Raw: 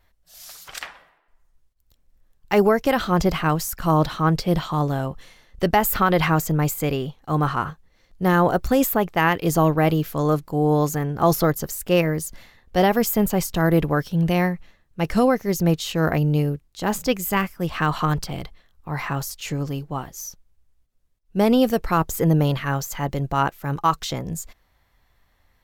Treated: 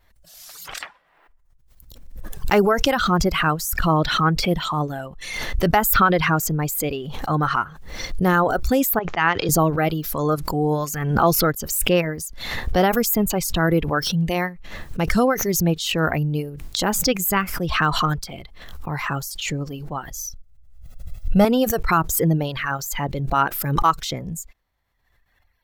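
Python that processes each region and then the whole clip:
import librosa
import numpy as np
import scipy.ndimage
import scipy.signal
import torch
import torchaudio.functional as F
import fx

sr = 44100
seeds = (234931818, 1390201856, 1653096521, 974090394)

y = fx.chain(x, sr, fx.resample_bad(factor=3, down='none', up='filtered'),
    fx.low_shelf(hz=470.0, db=-5.5),
    fx.band_widen(depth_pct=100), at=(8.99, 9.49))
y = fx.chain(y, sr, fx.low_shelf(hz=190.0, db=9.0),
    fx.comb(ms=1.5, depth=0.8), at=(20.11, 21.45))
y = fx.dereverb_blind(y, sr, rt60_s=1.8)
y = fx.dynamic_eq(y, sr, hz=1400.0, q=4.3, threshold_db=-39.0, ratio=4.0, max_db=6)
y = fx.pre_swell(y, sr, db_per_s=44.0)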